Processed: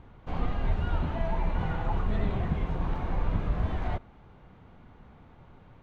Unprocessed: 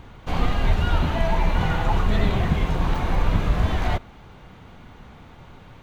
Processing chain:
low-pass filter 1,400 Hz 6 dB per octave
level −7.5 dB

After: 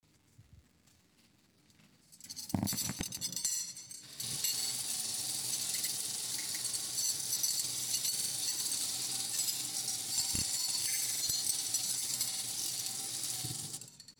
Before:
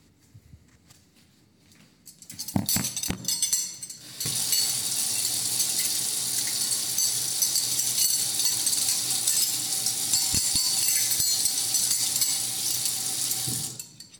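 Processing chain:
surface crackle 370 per second −48 dBFS
tape wow and flutter 37 cents
granular cloud, pitch spread up and down by 0 semitones
level −8 dB

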